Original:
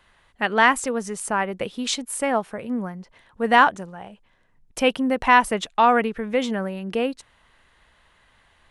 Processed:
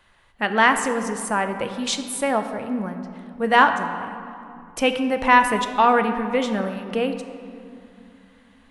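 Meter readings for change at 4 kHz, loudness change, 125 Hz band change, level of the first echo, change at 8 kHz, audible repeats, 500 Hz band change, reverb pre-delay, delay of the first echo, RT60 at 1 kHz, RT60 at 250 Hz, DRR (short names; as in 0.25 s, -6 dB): +0.5 dB, +0.5 dB, +1.5 dB, none, +0.5 dB, none, +1.0 dB, 3 ms, none, 2.6 s, 3.7 s, 7.0 dB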